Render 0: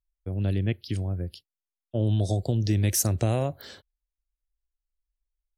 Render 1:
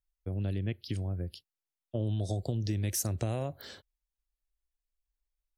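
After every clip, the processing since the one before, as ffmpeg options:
-af "acompressor=threshold=0.0398:ratio=2.5,volume=0.75"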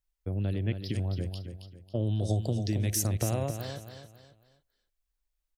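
-af "aecho=1:1:273|546|819|1092:0.398|0.139|0.0488|0.0171,volume=1.33"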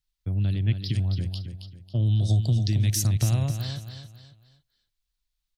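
-af "equalizer=f=125:t=o:w=1:g=10,equalizer=f=500:t=o:w=1:g=-9,equalizer=f=4000:t=o:w=1:g=9"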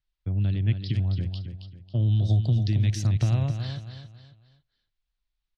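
-af "lowpass=3500"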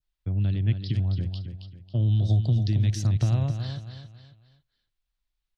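-af "adynamicequalizer=threshold=0.00141:dfrequency=2300:dqfactor=1.9:tfrequency=2300:tqfactor=1.9:attack=5:release=100:ratio=0.375:range=2.5:mode=cutabove:tftype=bell"

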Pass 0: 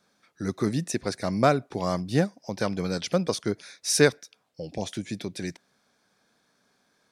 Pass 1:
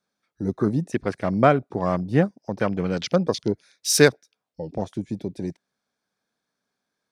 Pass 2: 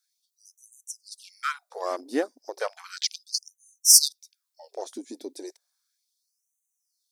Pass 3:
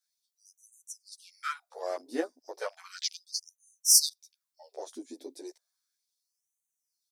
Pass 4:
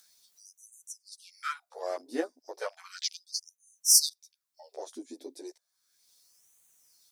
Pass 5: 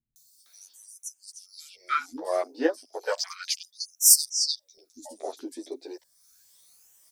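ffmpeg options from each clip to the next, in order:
-af "afwtdn=0.0126,volume=1.58"
-af "aexciter=amount=4.2:drive=5.8:freq=3900,afftfilt=real='re*gte(b*sr/1024,220*pow(6100/220,0.5+0.5*sin(2*PI*0.34*pts/sr)))':imag='im*gte(b*sr/1024,220*pow(6100/220,0.5+0.5*sin(2*PI*0.34*pts/sr)))':win_size=1024:overlap=0.75,volume=0.596"
-filter_complex "[0:a]asplit=2[s0][s1];[s1]adelay=11.3,afreqshift=0.71[s2];[s0][s2]amix=inputs=2:normalize=1,volume=0.75"
-af "acompressor=mode=upward:threshold=0.00447:ratio=2.5"
-filter_complex "[0:a]afftfilt=real='re*pow(10,7/40*sin(2*PI*(1.2*log(max(b,1)*sr/1024/100)/log(2)-(2.1)*(pts-256)/sr)))':imag='im*pow(10,7/40*sin(2*PI*(1.2*log(max(b,1)*sr/1024/100)/log(2)-(2.1)*(pts-256)/sr)))':win_size=1024:overlap=0.75,acrossover=split=220|5100[s0][s1][s2];[s2]adelay=160[s3];[s1]adelay=460[s4];[s0][s4][s3]amix=inputs=3:normalize=0,volume=2"

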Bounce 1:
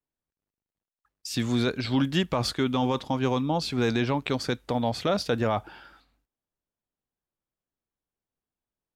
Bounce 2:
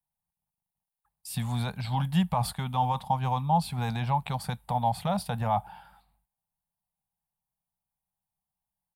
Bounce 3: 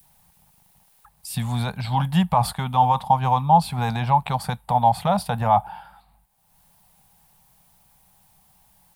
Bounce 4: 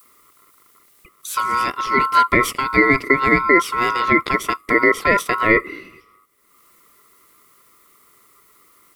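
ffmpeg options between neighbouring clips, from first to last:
-af "firequalizer=gain_entry='entry(100,0);entry(180,5);entry(300,-26);entry(810,8);entry(1300,-8);entry(3900,-7);entry(6200,-14);entry(9100,6)':delay=0.05:min_phase=1"
-af "adynamicequalizer=threshold=0.0141:dfrequency=920:dqfactor=0.88:tfrequency=920:tqfactor=0.88:attack=5:release=100:ratio=0.375:range=2.5:mode=boostabove:tftype=bell,acompressor=mode=upward:threshold=0.00794:ratio=2.5,volume=1.78"
-af "aeval=exprs='val(0)*sin(2*PI*1200*n/s)':c=same,alimiter=level_in=2.66:limit=0.891:release=50:level=0:latency=1,volume=0.891"

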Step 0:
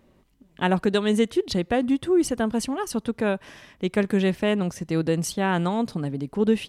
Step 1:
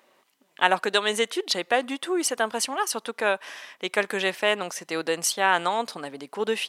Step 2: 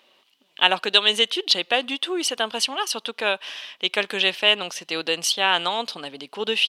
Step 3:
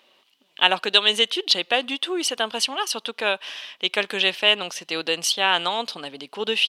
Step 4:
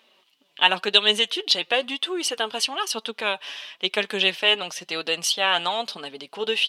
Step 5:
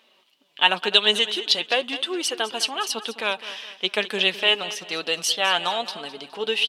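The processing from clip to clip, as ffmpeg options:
-af "highpass=730,volume=2.11"
-af "firequalizer=gain_entry='entry(2000,0);entry(2900,13);entry(7200,-2)':delay=0.05:min_phase=1,volume=0.891"
-af anull
-af "flanger=delay=4.5:depth=2.6:regen=46:speed=0.99:shape=sinusoidal,volume=1.41"
-af "aecho=1:1:208|416|624|832:0.178|0.0711|0.0285|0.0114"

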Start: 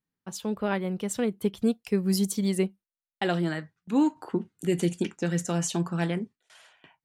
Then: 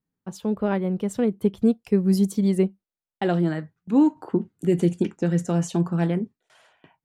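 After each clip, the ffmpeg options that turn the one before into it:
-af "tiltshelf=f=1200:g=6"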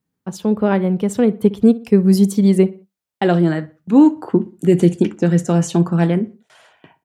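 -filter_complex "[0:a]highpass=50,asplit=2[s0][s1];[s1]adelay=61,lowpass=f=3200:p=1,volume=0.119,asplit=2[s2][s3];[s3]adelay=61,lowpass=f=3200:p=1,volume=0.38,asplit=2[s4][s5];[s5]adelay=61,lowpass=f=3200:p=1,volume=0.38[s6];[s0][s2][s4][s6]amix=inputs=4:normalize=0,volume=2.37"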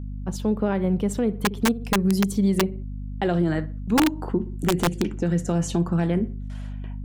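-af "aeval=exprs='(mod(1.5*val(0)+1,2)-1)/1.5':c=same,aeval=exprs='val(0)+0.0398*(sin(2*PI*50*n/s)+sin(2*PI*2*50*n/s)/2+sin(2*PI*3*50*n/s)/3+sin(2*PI*4*50*n/s)/4+sin(2*PI*5*50*n/s)/5)':c=same,alimiter=limit=0.299:level=0:latency=1:release=143,volume=0.708"

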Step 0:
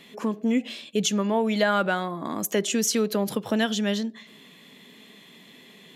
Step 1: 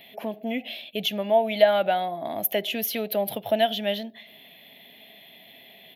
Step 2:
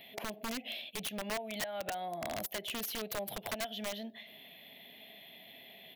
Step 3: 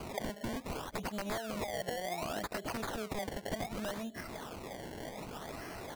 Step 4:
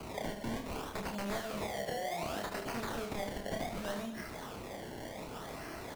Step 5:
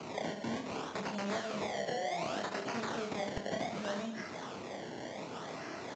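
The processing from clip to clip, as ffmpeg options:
-af "firequalizer=gain_entry='entry(110,0);entry(160,-8);entry(470,-6);entry(670,11);entry(1100,-13);entry(2100,2);entry(3300,3);entry(5200,-11);entry(7700,-24);entry(12000,10)':delay=0.05:min_phase=1"
-af "acompressor=threshold=0.0316:ratio=12,aeval=exprs='(mod(21.1*val(0)+1,2)-1)/21.1':c=same,volume=0.631"
-af "acompressor=threshold=0.00355:ratio=3,acrusher=samples=24:mix=1:aa=0.000001:lfo=1:lforange=24:lforate=0.66,volume=3.35"
-filter_complex "[0:a]acrossover=split=100|770|4700[s0][s1][s2][s3];[s3]asoftclip=type=tanh:threshold=0.0112[s4];[s0][s1][s2][s4]amix=inputs=4:normalize=0,aecho=1:1:30|75|142.5|243.8|395.6:0.631|0.398|0.251|0.158|0.1,volume=0.794"
-filter_complex "[0:a]acrossover=split=110[s0][s1];[s0]acrusher=bits=5:mix=0:aa=0.000001[s2];[s2][s1]amix=inputs=2:normalize=0,aresample=16000,aresample=44100,volume=1.19"

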